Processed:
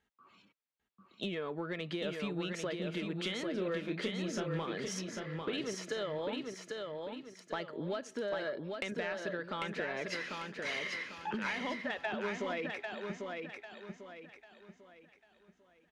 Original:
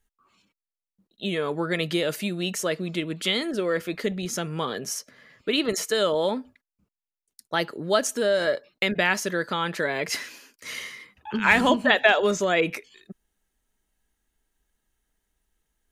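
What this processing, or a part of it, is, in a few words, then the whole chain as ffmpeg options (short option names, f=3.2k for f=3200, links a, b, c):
AM radio: -filter_complex "[0:a]highpass=110,lowpass=3.6k,acompressor=threshold=-37dB:ratio=10,asoftclip=type=tanh:threshold=-27.5dB,asettb=1/sr,asplit=3[a][b][c];[a]atrim=end=3.514[d];[b]atrim=start=3.51:end=4.64,asetpts=PTS-STARTPTS,afade=t=in:d=0.004:c=qsin,afade=t=out:st=1.126:d=0.004:c=qsin,asplit=2[e][f];[f]adelay=32,volume=-6.5dB[g];[e][g]amix=inputs=2:normalize=0,atrim=end_sample=49833[h];[c]atrim=start=4.636[i];[d][h]acrossfade=d=0.004:c1=hsin:c2=qsin[j];[j][i]acrossfade=d=0.004:c1=qsin:c2=hsin,aecho=1:1:796|1592|2388|3184|3980:0.631|0.233|0.0864|0.032|0.0118,volume=2.5dB"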